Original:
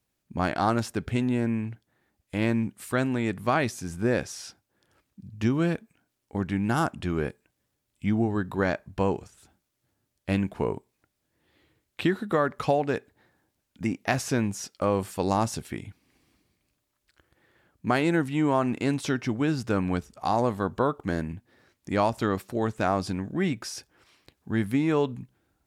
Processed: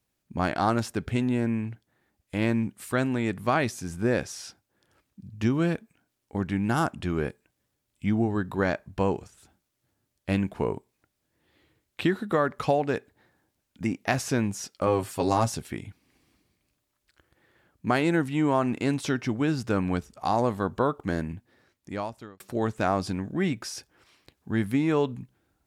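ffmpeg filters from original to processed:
ffmpeg -i in.wav -filter_complex "[0:a]asettb=1/sr,asplit=3[link_01][link_02][link_03];[link_01]atrim=end=14.864[link_04];[link_02]atrim=start=14.86:end=15.52,asetpts=PTS-STARTPTS,afade=type=in:duration=0.004:curve=qsin,afade=type=out:start_time=0.656:duration=0.004:curve=qsin,aecho=1:1:7.4:0.65,atrim=end_sample=29106[link_05];[link_03]atrim=start=15.516[link_06];[link_04][link_05]acrossfade=duration=0.004:curve1=hsin:curve2=qsin[link_07];[link_07][link_06]acrossfade=duration=0.004:curve1=qsin:curve2=hsin,asplit=2[link_08][link_09];[link_08]atrim=end=22.4,asetpts=PTS-STARTPTS,afade=type=out:start_time=21.35:duration=1.05[link_10];[link_09]atrim=start=22.4,asetpts=PTS-STARTPTS,afade=type=in:duration=0.004:curve=hsin[link_11];[link_10][link_11]concat=n=2:v=0:a=1" out.wav

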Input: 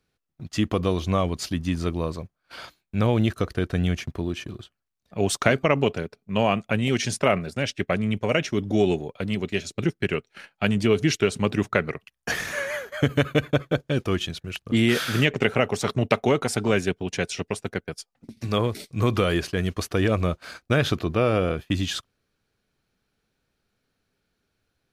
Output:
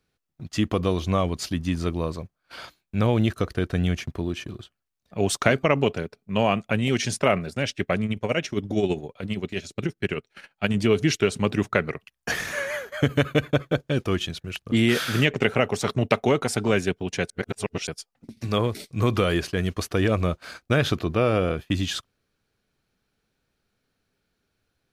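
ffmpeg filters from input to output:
ffmpeg -i in.wav -filter_complex "[0:a]asettb=1/sr,asplit=3[link_01][link_02][link_03];[link_01]atrim=end=8.054[link_04];[link_02]atrim=start=8.05:end=10.74,asetpts=PTS-STARTPTS,afade=type=in:duration=0.004:curve=qsin,afade=type=out:start_time=2.686:duration=0.004:curve=qsin,tremolo=f=15:d=0.59[link_05];[link_03]atrim=start=10.736[link_06];[link_04][link_05]acrossfade=duration=0.004:curve1=hsin:curve2=qsin[link_07];[link_07][link_06]acrossfade=duration=0.004:curve1=qsin:curve2=hsin,asplit=3[link_08][link_09][link_10];[link_08]atrim=end=17.302[link_11];[link_09]atrim=start=17.298:end=17.872,asetpts=PTS-STARTPTS,areverse[link_12];[link_10]atrim=start=17.868[link_13];[link_11][link_12]acrossfade=duration=0.004:curve1=hsin:curve2=hsin[link_14];[link_14][link_13]acrossfade=duration=0.004:curve1=hsin:curve2=hsin" out.wav

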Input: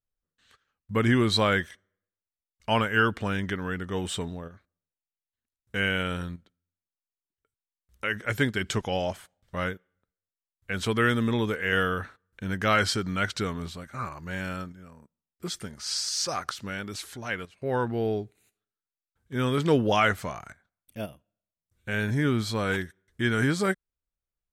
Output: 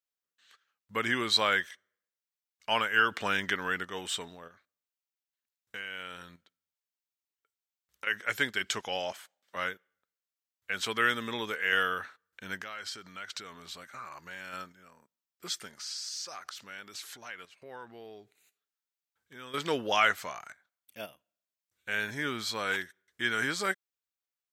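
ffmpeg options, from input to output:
ffmpeg -i in.wav -filter_complex "[0:a]asettb=1/sr,asplit=3[link_01][link_02][link_03];[link_01]atrim=end=3.114[link_04];[link_02]atrim=start=3.11:end=3.85,asetpts=PTS-STARTPTS,afade=type=in:duration=0.004:curve=qsin,afade=type=out:start_time=0.736:duration=0.004:curve=qsin,acontrast=26[link_05];[link_03]atrim=start=3.846[link_06];[link_04][link_05]acrossfade=duration=0.004:curve1=hsin:curve2=qsin[link_07];[link_07][link_06]acrossfade=duration=0.004:curve1=qsin:curve2=hsin,asettb=1/sr,asplit=3[link_08][link_09][link_10];[link_08]atrim=end=4.354[link_11];[link_09]atrim=start=4.35:end=8.07,asetpts=PTS-STARTPTS,afade=type=in:duration=0.004:curve=qsin,afade=type=out:start_time=3.716:duration=0.004:curve=qsin,acompressor=threshold=-33dB:ratio=10:attack=3.2:release=140:knee=1:detection=peak[link_12];[link_10]atrim=start=8.066[link_13];[link_11][link_12]acrossfade=duration=0.004:curve1=hsin:curve2=qsin[link_14];[link_14][link_13]acrossfade=duration=0.004:curve1=qsin:curve2=hsin,asettb=1/sr,asplit=3[link_15][link_16][link_17];[link_15]atrim=end=9.124[link_18];[link_16]atrim=start=9.12:end=9.56,asetpts=PTS-STARTPTS,afade=type=in:duration=0.004:curve=qsin,afade=type=out:start_time=0.436:duration=0.004:curve=qsin,highpass=frequency=190:width=0.5412,highpass=frequency=190:width=1.3066[link_19];[link_17]atrim=start=9.556[link_20];[link_18][link_19]acrossfade=duration=0.004:curve1=hsin:curve2=qsin[link_21];[link_21][link_20]acrossfade=duration=0.004:curve1=qsin:curve2=hsin,asettb=1/sr,asplit=3[link_22][link_23][link_24];[link_22]atrim=end=12.584[link_25];[link_23]atrim=start=12.58:end=14.53,asetpts=PTS-STARTPTS,afade=type=in:duration=0.004:curve=qsin,afade=type=out:start_time=1.946:duration=0.004:curve=qsin,acompressor=threshold=-34dB:ratio=16:attack=3.2:release=140:knee=1:detection=peak[link_26];[link_24]atrim=start=14.526[link_27];[link_25][link_26]acrossfade=duration=0.004:curve1=hsin:curve2=qsin[link_28];[link_28][link_27]acrossfade=duration=0.004:curve1=qsin:curve2=hsin,asettb=1/sr,asplit=3[link_29][link_30][link_31];[link_29]atrim=end=15.764[link_32];[link_30]atrim=start=15.76:end=19.54,asetpts=PTS-STARTPTS,afade=type=in:duration=0.004:curve=qsin,afade=type=out:start_time=3.776:duration=0.004:curve=qsin,acompressor=threshold=-39dB:ratio=3:attack=3.2:release=140:knee=1:detection=peak[link_33];[link_31]atrim=start=19.536[link_34];[link_32][link_33]acrossfade=duration=0.004:curve1=hsin:curve2=qsin[link_35];[link_35][link_34]acrossfade=duration=0.004:curve1=qsin:curve2=hsin,highpass=frequency=1300:poles=1,equalizer=frequency=9600:width=3.3:gain=-7,volume=1.5dB" out.wav

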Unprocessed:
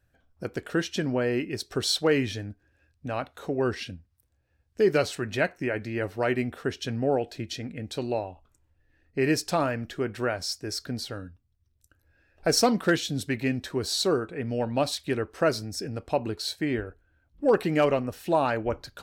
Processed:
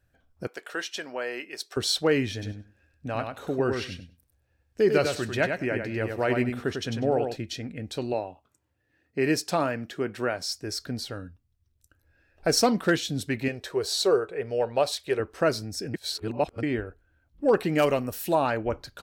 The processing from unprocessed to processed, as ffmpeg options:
ffmpeg -i in.wav -filter_complex "[0:a]asettb=1/sr,asplit=3[link_01][link_02][link_03];[link_01]atrim=end=0.474[link_04];[link_02]atrim=start=0.47:end=1.77,asetpts=PTS-STARTPTS,afade=type=in:duration=0.004:curve=qsin,afade=type=out:start_time=1.296:duration=0.004:curve=qsin,highpass=650[link_05];[link_03]atrim=start=1.766[link_06];[link_04][link_05]acrossfade=duration=0.004:curve1=hsin:curve2=qsin[link_07];[link_07][link_06]acrossfade=duration=0.004:curve1=qsin:curve2=hsin,asplit=3[link_08][link_09][link_10];[link_08]afade=type=out:start_time=2.41:duration=0.02[link_11];[link_09]aecho=1:1:98|196|294:0.531|0.0849|0.0136,afade=type=in:start_time=2.41:duration=0.02,afade=type=out:start_time=7.35:duration=0.02[link_12];[link_10]afade=type=in:start_time=7.35:duration=0.02[link_13];[link_11][link_12][link_13]amix=inputs=3:normalize=0,asettb=1/sr,asplit=3[link_14][link_15][link_16];[link_14]atrim=end=8.134[link_17];[link_15]atrim=start=8.13:end=10.53,asetpts=PTS-STARTPTS,afade=type=in:duration=0.004:curve=qsin,afade=type=out:start_time=2.396:duration=0.004:curve=qsin,highpass=130[link_18];[link_16]atrim=start=10.526[link_19];[link_17][link_18]acrossfade=duration=0.004:curve1=hsin:curve2=qsin[link_20];[link_20][link_19]acrossfade=duration=0.004:curve1=qsin:curve2=hsin,asettb=1/sr,asplit=3[link_21][link_22][link_23];[link_21]atrim=end=13.484[link_24];[link_22]atrim=start=13.48:end=15.2,asetpts=PTS-STARTPTS,afade=type=in:duration=0.004:curve=qsin,afade=type=out:start_time=1.716:duration=0.004:curve=qsin,lowshelf=frequency=340:width_type=q:width=3:gain=-6.5[link_25];[link_23]atrim=start=15.196[link_26];[link_24][link_25]acrossfade=duration=0.004:curve1=hsin:curve2=qsin[link_27];[link_27][link_26]acrossfade=duration=0.004:curve1=qsin:curve2=hsin,asettb=1/sr,asplit=3[link_28][link_29][link_30];[link_28]atrim=end=17.784[link_31];[link_29]atrim=start=17.78:end=18.35,asetpts=PTS-STARTPTS,afade=type=in:duration=0.004:curve=qsin,afade=type=out:start_time=0.566:duration=0.004:curve=qsin,aemphasis=mode=production:type=50fm[link_32];[link_30]atrim=start=18.346[link_33];[link_31][link_32]acrossfade=duration=0.004:curve1=hsin:curve2=qsin[link_34];[link_34][link_33]acrossfade=duration=0.004:curve1=qsin:curve2=hsin,asplit=3[link_35][link_36][link_37];[link_35]atrim=end=15.942[link_38];[link_36]atrim=start=15.938:end=16.632,asetpts=PTS-STARTPTS,areverse[link_39];[link_37]atrim=start=16.628[link_40];[link_38][link_39]acrossfade=duration=0.004:curve1=hsin:curve2=hsin[link_41];[link_41][link_40]acrossfade=duration=0.004:curve1=hsin:curve2=hsin" out.wav

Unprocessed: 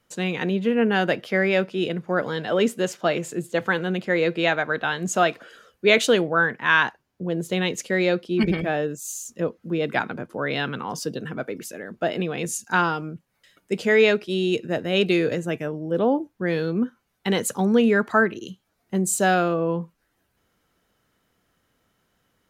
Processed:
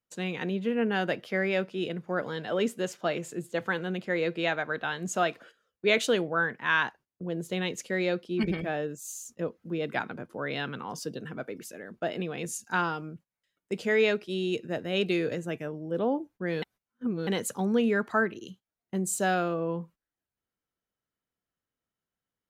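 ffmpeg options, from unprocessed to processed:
ffmpeg -i in.wav -filter_complex "[0:a]asplit=3[link_01][link_02][link_03];[link_01]atrim=end=16.622[link_04];[link_02]atrim=start=16.618:end=17.272,asetpts=PTS-STARTPTS,areverse[link_05];[link_03]atrim=start=17.268[link_06];[link_04][link_05]acrossfade=duration=0.004:curve1=hsin:curve2=hsin[link_07];[link_07][link_06]acrossfade=duration=0.004:curve1=hsin:curve2=hsin,agate=range=-16dB:threshold=-43dB:ratio=16:detection=peak,volume=-7dB" out.wav

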